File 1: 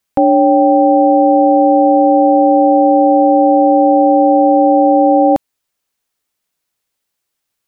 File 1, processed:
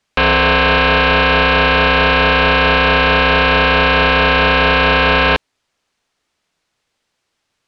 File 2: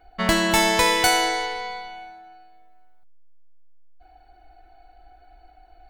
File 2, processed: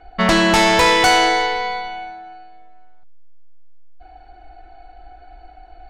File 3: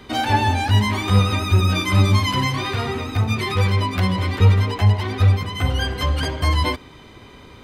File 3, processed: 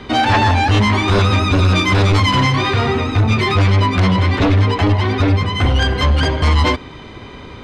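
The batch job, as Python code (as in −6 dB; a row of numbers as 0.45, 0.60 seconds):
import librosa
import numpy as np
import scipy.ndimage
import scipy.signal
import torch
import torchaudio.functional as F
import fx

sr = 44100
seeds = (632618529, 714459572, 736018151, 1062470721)

y = fx.air_absorb(x, sr, metres=90.0)
y = fx.fold_sine(y, sr, drive_db=13, ceiling_db=-1.5)
y = y * 10.0 ** (-9 / 20.0) / np.max(np.abs(y))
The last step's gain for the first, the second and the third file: −7.5, −7.5, −7.5 decibels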